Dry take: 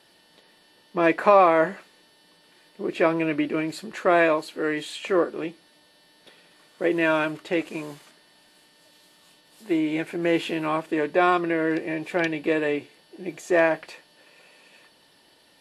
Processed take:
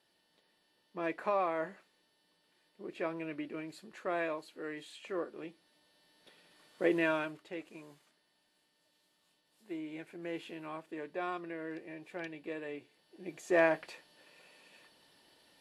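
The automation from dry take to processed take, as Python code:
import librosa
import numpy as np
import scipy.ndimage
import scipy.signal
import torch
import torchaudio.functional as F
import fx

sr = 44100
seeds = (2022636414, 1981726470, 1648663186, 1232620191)

y = fx.gain(x, sr, db=fx.line((5.15, -16.0), (6.91, -6.0), (7.51, -18.0), (12.67, -18.0), (13.63, -7.0)))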